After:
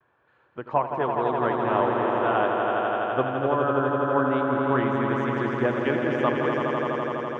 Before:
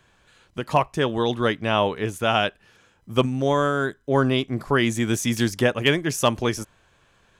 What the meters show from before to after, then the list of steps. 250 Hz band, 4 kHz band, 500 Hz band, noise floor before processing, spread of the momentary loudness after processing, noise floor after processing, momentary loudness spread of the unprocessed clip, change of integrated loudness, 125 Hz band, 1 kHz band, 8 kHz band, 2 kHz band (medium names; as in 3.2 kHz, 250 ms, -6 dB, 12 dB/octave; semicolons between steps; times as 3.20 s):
-2.0 dB, -14.5 dB, 0.0 dB, -61 dBFS, 4 LU, -64 dBFS, 6 LU, -1.5 dB, -5.5 dB, +2.0 dB, under -25 dB, -2.5 dB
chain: Chebyshev band-pass 160–1300 Hz, order 2; gate with hold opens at -58 dBFS; peaking EQ 190 Hz -13.5 dB 0.66 oct; vibrato 0.98 Hz 36 cents; on a send: echo with a slow build-up 83 ms, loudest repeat 5, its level -6 dB; on the sum: trim -2.5 dB